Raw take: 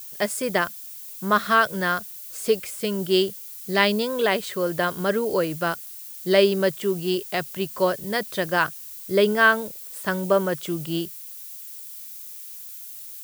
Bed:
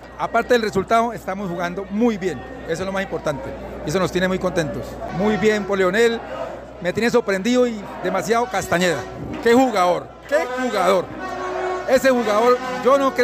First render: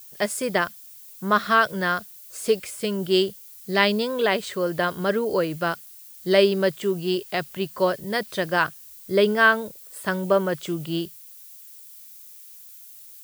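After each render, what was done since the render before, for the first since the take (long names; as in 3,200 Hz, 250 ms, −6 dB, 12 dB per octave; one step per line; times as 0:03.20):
noise reduction from a noise print 6 dB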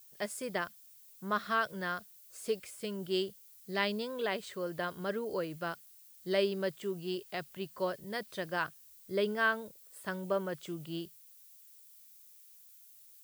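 level −12.5 dB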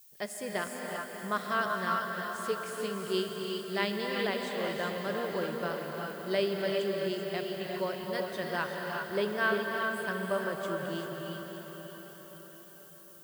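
feedback delay with all-pass diffusion 610 ms, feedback 48%, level −7.5 dB
reverb whose tail is shaped and stops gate 420 ms rising, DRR 1.5 dB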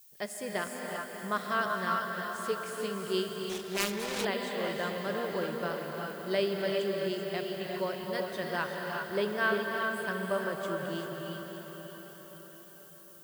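0:03.49–0:04.25: phase distortion by the signal itself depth 0.76 ms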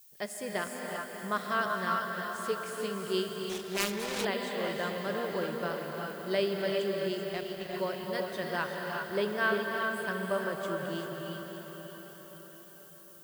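0:07.32–0:07.73: mu-law and A-law mismatch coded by A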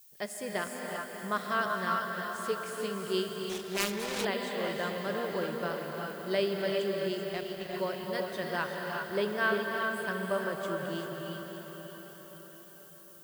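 no processing that can be heard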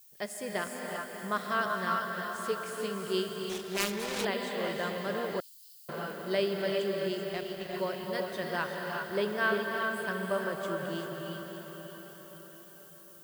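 0:05.40–0:05.89: inverse Chebyshev high-pass filter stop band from 960 Hz, stop band 80 dB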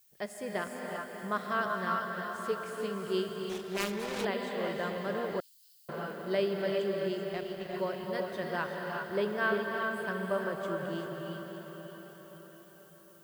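high-shelf EQ 2,800 Hz −7.5 dB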